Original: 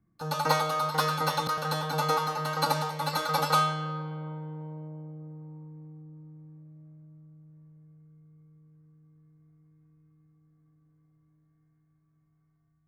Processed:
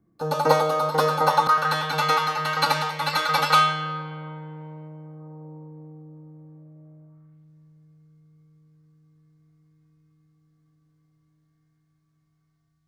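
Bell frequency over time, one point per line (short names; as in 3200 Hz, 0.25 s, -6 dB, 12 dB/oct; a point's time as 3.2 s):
bell +12 dB 2 oct
1.01 s 430 Hz
1.85 s 2300 Hz
5 s 2300 Hz
5.46 s 590 Hz
7.01 s 590 Hz
7.51 s 4600 Hz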